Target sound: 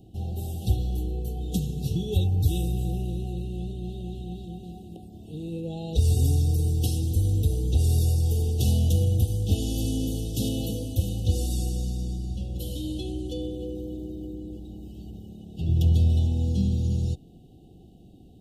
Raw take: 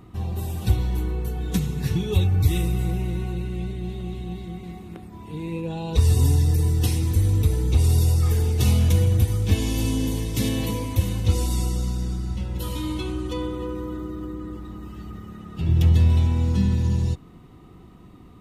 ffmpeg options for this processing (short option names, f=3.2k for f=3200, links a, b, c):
-af "asuperstop=centerf=1500:order=20:qfactor=0.76,volume=-3.5dB"